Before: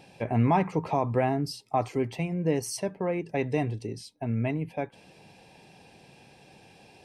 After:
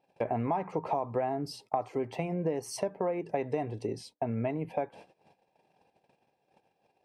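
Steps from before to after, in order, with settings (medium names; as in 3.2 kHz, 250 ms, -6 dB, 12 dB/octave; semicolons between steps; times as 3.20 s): gate -50 dBFS, range -27 dB; peaking EQ 690 Hz +13 dB 2.6 oct; compression 6:1, threshold -24 dBFS, peak gain reduction 15.5 dB; trim -4 dB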